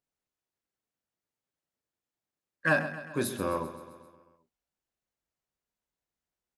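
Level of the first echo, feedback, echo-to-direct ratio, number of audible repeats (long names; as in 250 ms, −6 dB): −13.0 dB, 59%, −11.0 dB, 5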